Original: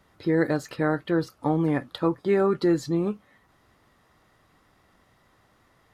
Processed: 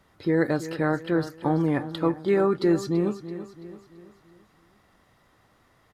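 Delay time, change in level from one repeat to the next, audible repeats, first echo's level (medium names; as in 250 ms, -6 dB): 334 ms, -6.5 dB, 4, -13.0 dB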